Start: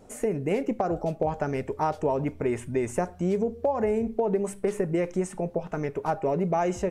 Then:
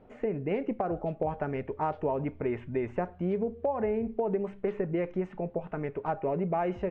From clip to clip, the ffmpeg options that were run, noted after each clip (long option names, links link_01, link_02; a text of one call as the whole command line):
ffmpeg -i in.wav -af "lowpass=frequency=3000:width=0.5412,lowpass=frequency=3000:width=1.3066,volume=-4dB" out.wav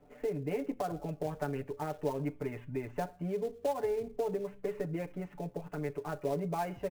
ffmpeg -i in.wav -filter_complex "[0:a]aecho=1:1:6.9:0.95,acrossover=split=350|490[link_01][link_02][link_03];[link_03]acrusher=bits=3:mode=log:mix=0:aa=0.000001[link_04];[link_01][link_02][link_04]amix=inputs=3:normalize=0,volume=-7.5dB" out.wav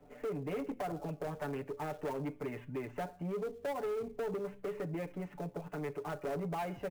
ffmpeg -i in.wav -filter_complex "[0:a]acrossover=split=130[link_01][link_02];[link_01]acompressor=threshold=-57dB:ratio=6[link_03];[link_03][link_02]amix=inputs=2:normalize=0,asoftclip=type=tanh:threshold=-34dB,volume=1.5dB" out.wav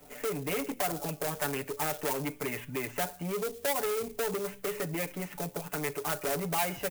ffmpeg -i in.wav -filter_complex "[0:a]crystalizer=i=9:c=0,asplit=2[link_01][link_02];[link_02]acrusher=bits=3:mode=log:mix=0:aa=0.000001,volume=-9.5dB[link_03];[link_01][link_03]amix=inputs=2:normalize=0" out.wav